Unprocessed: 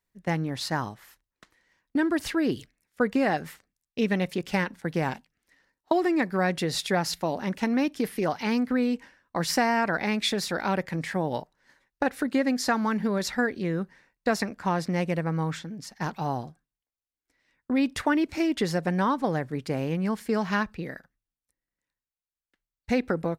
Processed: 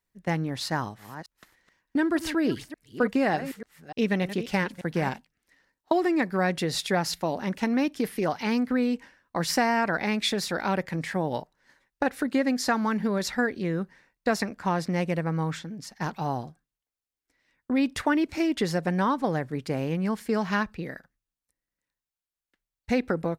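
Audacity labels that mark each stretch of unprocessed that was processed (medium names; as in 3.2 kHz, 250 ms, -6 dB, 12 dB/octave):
0.670000	5.090000	chunks repeated in reverse 296 ms, level -12 dB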